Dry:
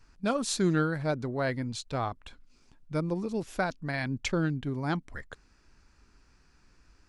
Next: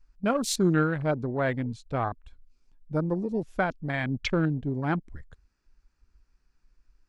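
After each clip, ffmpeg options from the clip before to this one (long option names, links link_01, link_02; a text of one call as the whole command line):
ffmpeg -i in.wav -af "afwtdn=0.0112,volume=3dB" out.wav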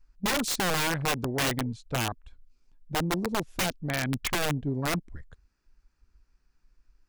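ffmpeg -i in.wav -af "aeval=exprs='(mod(11.2*val(0)+1,2)-1)/11.2':channel_layout=same" out.wav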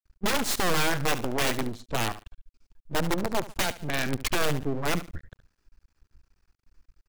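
ffmpeg -i in.wav -af "aecho=1:1:72|144|216:0.178|0.0516|0.015,aeval=exprs='max(val(0),0)':channel_layout=same,volume=5.5dB" out.wav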